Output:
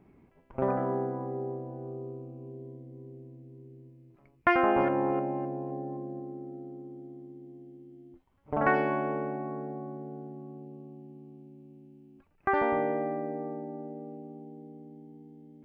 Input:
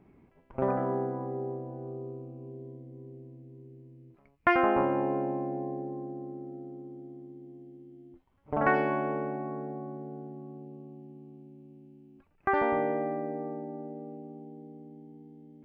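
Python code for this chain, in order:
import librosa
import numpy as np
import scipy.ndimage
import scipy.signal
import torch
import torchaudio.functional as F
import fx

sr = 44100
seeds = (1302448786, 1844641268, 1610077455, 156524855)

y = fx.reverse_delay(x, sr, ms=259, wet_db=-13.5, at=(3.64, 6.2))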